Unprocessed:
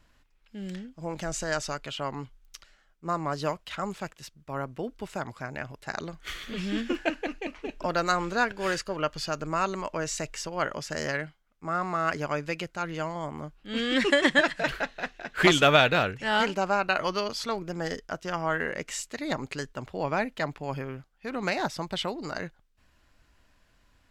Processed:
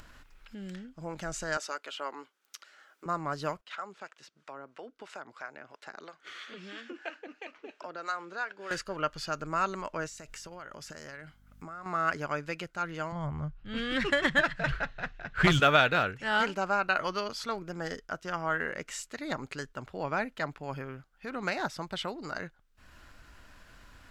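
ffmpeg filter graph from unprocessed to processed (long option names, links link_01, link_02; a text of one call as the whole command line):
ffmpeg -i in.wav -filter_complex "[0:a]asettb=1/sr,asplit=3[link_01][link_02][link_03];[link_01]atrim=end=1.574[link_04];[link_02]atrim=start=1.57:end=3.06,asetpts=PTS-STARTPTS,afade=type=in:duration=0.004:curve=qsin,afade=type=out:start_time=1.486:duration=0.004:curve=qsin,highpass=frequency=320:width=0.5412,highpass=frequency=320:width=1.3066,bandreject=frequency=710:width=16[link_05];[link_03]atrim=start=3.056[link_06];[link_04][link_05]acrossfade=duration=0.004:curve1=hsin:curve2=qsin[link_07];[link_07][link_06]acrossfade=duration=0.004:curve1=qsin:curve2=hsin,asettb=1/sr,asplit=3[link_08][link_09][link_10];[link_08]atrim=end=3.614[link_11];[link_09]atrim=start=3.61:end=8.71,asetpts=PTS-STARTPTS,afade=type=in:duration=0.004:curve=qsin,afade=type=out:start_time=5.096:duration=0.004:curve=qsin,acompressor=threshold=-30dB:ratio=2:attack=3.2:release=140:knee=1:detection=peak,acrossover=split=470[link_12][link_13];[link_12]aeval=exprs='val(0)*(1-0.7/2+0.7/2*cos(2*PI*3*n/s))':channel_layout=same[link_14];[link_13]aeval=exprs='val(0)*(1-0.7/2-0.7/2*cos(2*PI*3*n/s))':channel_layout=same[link_15];[link_14][link_15]amix=inputs=2:normalize=0,highpass=360,lowpass=6500[link_16];[link_10]atrim=start=8.706[link_17];[link_11][link_16]acrossfade=duration=0.004:curve1=hsin:curve2=qsin[link_18];[link_18][link_17]acrossfade=duration=0.004:curve1=qsin:curve2=hsin,asettb=1/sr,asplit=3[link_19][link_20][link_21];[link_19]atrim=end=10.064[link_22];[link_20]atrim=start=10.06:end=11.86,asetpts=PTS-STARTPTS,afade=type=in:duration=0.004:curve=qsin,afade=type=out:start_time=1.796:duration=0.004:curve=qsin,highshelf=frequency=6800:gain=7.5,acompressor=threshold=-37dB:ratio=16:attack=3.2:release=140:knee=1:detection=peak,aeval=exprs='val(0)+0.000708*(sin(2*PI*50*n/s)+sin(2*PI*2*50*n/s)/2+sin(2*PI*3*50*n/s)/3+sin(2*PI*4*50*n/s)/4+sin(2*PI*5*50*n/s)/5)':channel_layout=same[link_23];[link_21]atrim=start=11.856[link_24];[link_22][link_23]acrossfade=duration=0.004:curve1=hsin:curve2=qsin[link_25];[link_25][link_24]acrossfade=duration=0.004:curve1=qsin:curve2=hsin,asettb=1/sr,asplit=3[link_26][link_27][link_28];[link_26]atrim=end=13.124[link_29];[link_27]atrim=start=13.12:end=15.6,asetpts=PTS-STARTPTS,afade=type=in:duration=0.004:curve=qsin,afade=type=out:start_time=2.476:duration=0.004:curve=qsin,adynamicsmooth=sensitivity=2:basefreq=5700,lowshelf=frequency=180:width_type=q:width=1.5:gain=13.5[link_30];[link_28]atrim=start=15.596[link_31];[link_29][link_30]acrossfade=duration=0.004:curve1=hsin:curve2=qsin[link_32];[link_32][link_31]acrossfade=duration=0.004:curve1=qsin:curve2=hsin,equalizer=frequency=1400:width_type=o:width=0.51:gain=6,acompressor=mode=upward:threshold=-35dB:ratio=2.5,volume=-5dB" out.wav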